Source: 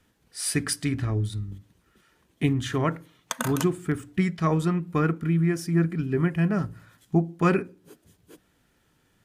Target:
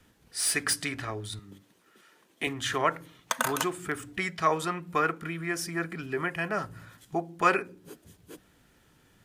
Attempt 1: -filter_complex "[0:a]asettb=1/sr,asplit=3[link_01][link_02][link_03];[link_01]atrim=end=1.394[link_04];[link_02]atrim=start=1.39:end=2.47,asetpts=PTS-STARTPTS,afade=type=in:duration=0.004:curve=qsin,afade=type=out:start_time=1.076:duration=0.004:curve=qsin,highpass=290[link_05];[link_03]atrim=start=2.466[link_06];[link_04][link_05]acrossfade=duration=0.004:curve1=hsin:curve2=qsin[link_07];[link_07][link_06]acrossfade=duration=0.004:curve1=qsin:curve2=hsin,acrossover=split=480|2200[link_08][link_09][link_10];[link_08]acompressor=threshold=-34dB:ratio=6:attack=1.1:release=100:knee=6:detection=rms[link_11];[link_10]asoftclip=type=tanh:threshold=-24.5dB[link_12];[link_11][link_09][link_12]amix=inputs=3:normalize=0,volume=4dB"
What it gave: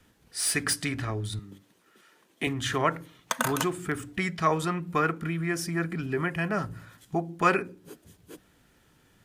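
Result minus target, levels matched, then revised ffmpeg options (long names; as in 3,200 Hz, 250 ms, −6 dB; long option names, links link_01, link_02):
downward compressor: peak gain reduction −8 dB
-filter_complex "[0:a]asettb=1/sr,asplit=3[link_01][link_02][link_03];[link_01]atrim=end=1.394[link_04];[link_02]atrim=start=1.39:end=2.47,asetpts=PTS-STARTPTS,afade=type=in:duration=0.004:curve=qsin,afade=type=out:start_time=1.076:duration=0.004:curve=qsin,highpass=290[link_05];[link_03]atrim=start=2.466[link_06];[link_04][link_05]acrossfade=duration=0.004:curve1=hsin:curve2=qsin[link_07];[link_07][link_06]acrossfade=duration=0.004:curve1=qsin:curve2=hsin,acrossover=split=480|2200[link_08][link_09][link_10];[link_08]acompressor=threshold=-43.5dB:ratio=6:attack=1.1:release=100:knee=6:detection=rms[link_11];[link_10]asoftclip=type=tanh:threshold=-24.5dB[link_12];[link_11][link_09][link_12]amix=inputs=3:normalize=0,volume=4dB"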